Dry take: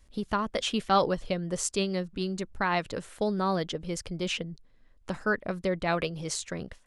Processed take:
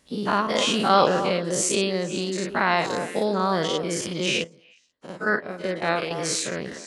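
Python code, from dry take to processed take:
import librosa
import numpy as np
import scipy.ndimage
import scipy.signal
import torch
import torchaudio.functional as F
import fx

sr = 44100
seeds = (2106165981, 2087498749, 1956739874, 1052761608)

y = fx.spec_dilate(x, sr, span_ms=120)
y = scipy.signal.sosfilt(scipy.signal.butter(2, 150.0, 'highpass', fs=sr, output='sos'), y)
y = fx.echo_stepped(y, sr, ms=122, hz=320.0, octaves=1.4, feedback_pct=70, wet_db=-6.0)
y = fx.upward_expand(y, sr, threshold_db=-32.0, expansion=2.5, at=(4.44, 6.11))
y = y * 10.0 ** (1.5 / 20.0)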